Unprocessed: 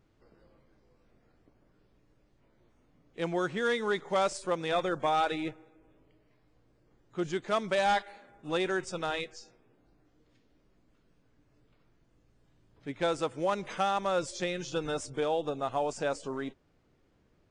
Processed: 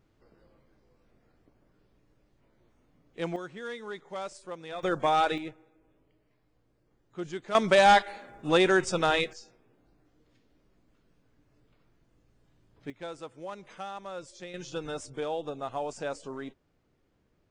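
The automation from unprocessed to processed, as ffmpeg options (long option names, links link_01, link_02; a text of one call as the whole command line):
ffmpeg -i in.wav -af "asetnsamples=nb_out_samples=441:pad=0,asendcmd='3.36 volume volume -9.5dB;4.83 volume volume 3dB;5.38 volume volume -4dB;7.55 volume volume 8dB;9.33 volume volume 0.5dB;12.9 volume volume -10.5dB;14.54 volume volume -3dB',volume=0dB" out.wav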